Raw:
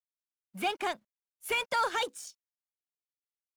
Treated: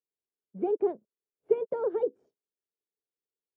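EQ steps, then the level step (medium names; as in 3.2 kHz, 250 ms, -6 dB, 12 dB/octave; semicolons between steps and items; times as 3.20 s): high-pass 97 Hz 12 dB/octave; resonant low-pass 430 Hz, resonance Q 4.9; 0.0 dB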